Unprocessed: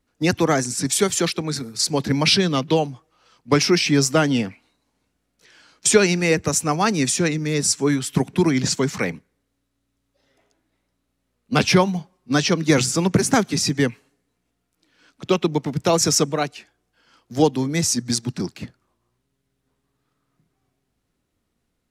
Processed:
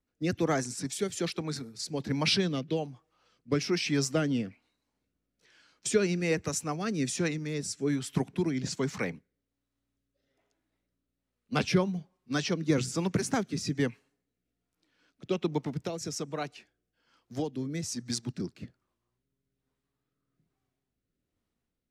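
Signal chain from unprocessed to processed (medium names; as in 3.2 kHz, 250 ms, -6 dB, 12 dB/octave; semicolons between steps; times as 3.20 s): treble shelf 6.5 kHz -4.5 dB; 15.75–18.00 s: compression 12:1, threshold -19 dBFS, peak gain reduction 9.5 dB; rotary cabinet horn 1.2 Hz; trim -8.5 dB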